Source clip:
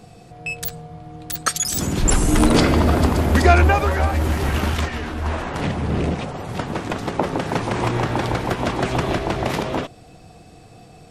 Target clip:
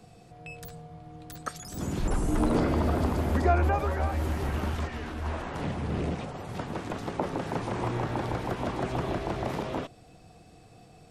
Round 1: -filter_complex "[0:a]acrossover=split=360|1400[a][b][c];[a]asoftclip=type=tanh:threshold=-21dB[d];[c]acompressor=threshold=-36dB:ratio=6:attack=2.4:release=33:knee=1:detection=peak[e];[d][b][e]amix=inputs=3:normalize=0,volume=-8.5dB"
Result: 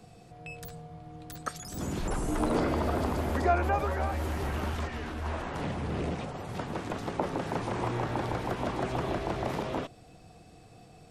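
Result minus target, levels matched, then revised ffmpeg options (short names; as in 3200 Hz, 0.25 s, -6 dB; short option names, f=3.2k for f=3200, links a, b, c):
soft clip: distortion +11 dB
-filter_complex "[0:a]acrossover=split=360|1400[a][b][c];[a]asoftclip=type=tanh:threshold=-10.5dB[d];[c]acompressor=threshold=-36dB:ratio=6:attack=2.4:release=33:knee=1:detection=peak[e];[d][b][e]amix=inputs=3:normalize=0,volume=-8.5dB"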